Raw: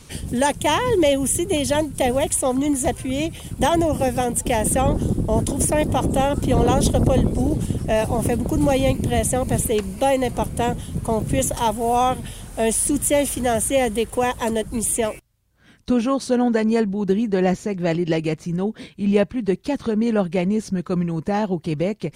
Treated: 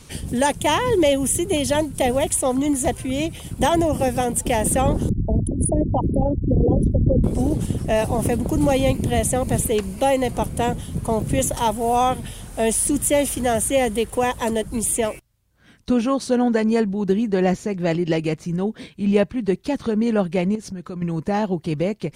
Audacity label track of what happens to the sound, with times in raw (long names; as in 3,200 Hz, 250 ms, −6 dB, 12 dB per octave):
5.090000	7.240000	spectral envelope exaggerated exponent 3
20.550000	21.020000	downward compressor 4 to 1, threshold −29 dBFS